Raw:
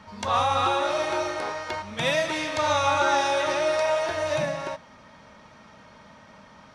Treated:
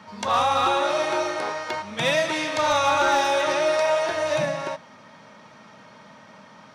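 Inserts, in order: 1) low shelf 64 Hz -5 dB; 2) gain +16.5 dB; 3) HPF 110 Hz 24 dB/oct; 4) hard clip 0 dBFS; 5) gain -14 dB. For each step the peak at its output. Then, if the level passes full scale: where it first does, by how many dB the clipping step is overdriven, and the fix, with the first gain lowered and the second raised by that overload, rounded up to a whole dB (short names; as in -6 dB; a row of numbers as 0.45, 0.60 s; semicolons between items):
-10.0, +6.5, +7.0, 0.0, -14.0 dBFS; step 2, 7.0 dB; step 2 +9.5 dB, step 5 -7 dB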